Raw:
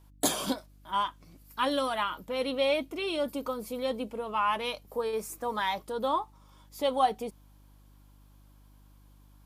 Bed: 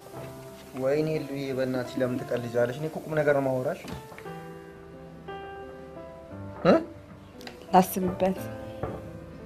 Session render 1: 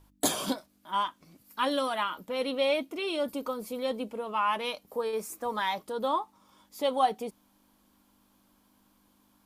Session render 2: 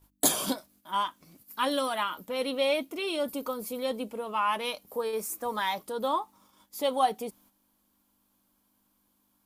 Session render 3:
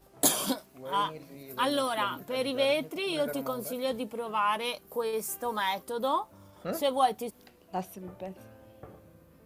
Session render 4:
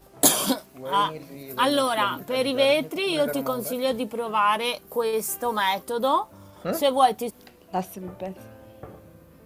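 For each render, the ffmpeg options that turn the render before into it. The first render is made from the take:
-af "bandreject=f=50:t=h:w=4,bandreject=f=100:t=h:w=4,bandreject=f=150:t=h:w=4"
-af "agate=range=0.398:threshold=0.001:ratio=16:detection=peak,highshelf=f=9200:g=11"
-filter_complex "[1:a]volume=0.178[s0];[0:a][s0]amix=inputs=2:normalize=0"
-af "volume=2.11"

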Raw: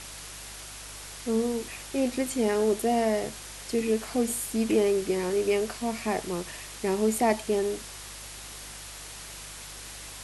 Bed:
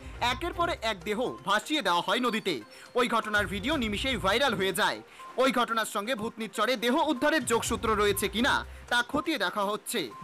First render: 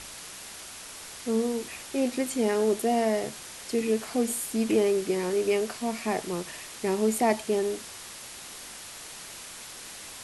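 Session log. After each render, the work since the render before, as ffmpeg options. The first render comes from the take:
-af "bandreject=f=50:t=h:w=4,bandreject=f=100:t=h:w=4,bandreject=f=150:t=h:w=4"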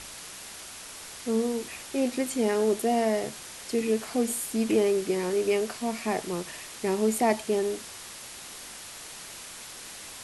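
-af anull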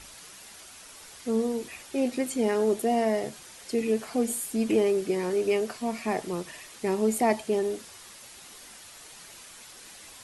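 -af "afftdn=nr=7:nf=-43"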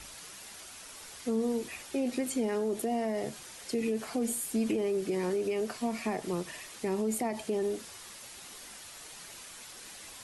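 -filter_complex "[0:a]alimiter=limit=0.0891:level=0:latency=1:release=53,acrossover=split=280[s0][s1];[s1]acompressor=threshold=0.0224:ratio=2[s2];[s0][s2]amix=inputs=2:normalize=0"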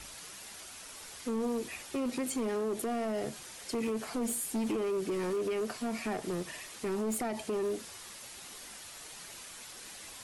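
-af "asoftclip=type=hard:threshold=0.0355"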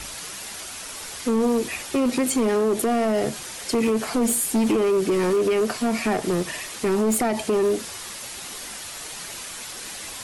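-af "volume=3.98"

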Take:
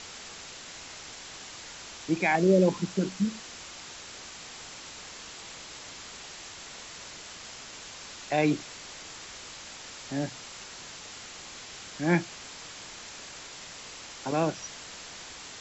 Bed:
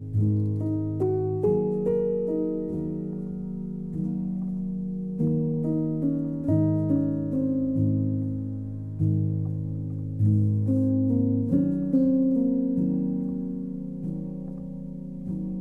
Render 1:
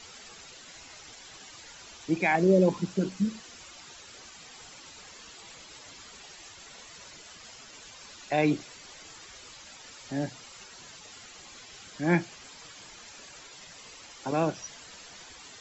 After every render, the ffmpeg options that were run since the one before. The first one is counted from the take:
-af "afftdn=nr=11:nf=-45"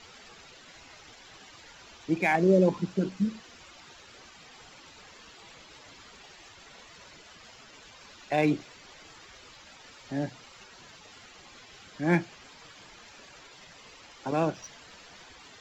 -af "adynamicsmooth=sensitivity=7:basefreq=4700"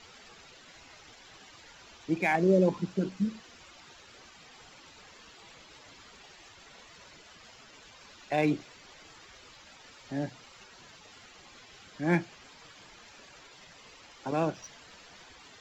-af "volume=0.794"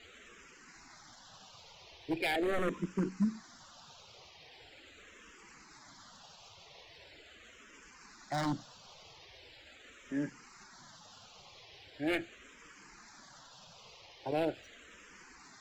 -filter_complex "[0:a]aeval=exprs='0.075*(abs(mod(val(0)/0.075+3,4)-2)-1)':c=same,asplit=2[s0][s1];[s1]afreqshift=-0.41[s2];[s0][s2]amix=inputs=2:normalize=1"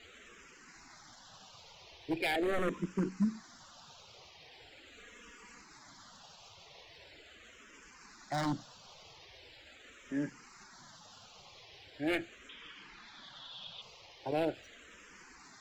-filter_complex "[0:a]asettb=1/sr,asplit=3[s0][s1][s2];[s0]atrim=end=4.914[s3];[s1]atrim=start=4.91:end=5.61,asetpts=PTS-STARTPTS,afade=t=in:d=0.004:c=qsin,afade=t=out:st=0.696:d=0.004:c=qsin,aecho=1:1:4.2:0.65,atrim=end_sample=30870[s4];[s2]atrim=start=5.606[s5];[s3][s4]acrossfade=d=0.004:c1=hsin:c2=qsin[s6];[s6][s5]acrossfade=d=0.004:c1=qsin:c2=hsin,asettb=1/sr,asplit=3[s7][s8][s9];[s7]atrim=end=12.494[s10];[s8]atrim=start=12.49:end=13.82,asetpts=PTS-STARTPTS,afade=t=in:d=0.004:c=qsin,afade=t=out:st=1.326:d=0.004:c=qsin,lowpass=f=3400:t=q:w=7[s11];[s9]atrim=start=13.816[s12];[s10][s11]acrossfade=d=0.004:c1=hsin:c2=qsin[s13];[s13][s12]acrossfade=d=0.004:c1=qsin:c2=hsin"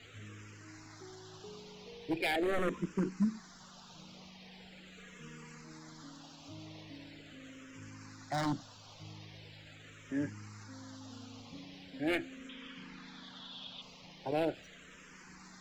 -filter_complex "[1:a]volume=0.0398[s0];[0:a][s0]amix=inputs=2:normalize=0"

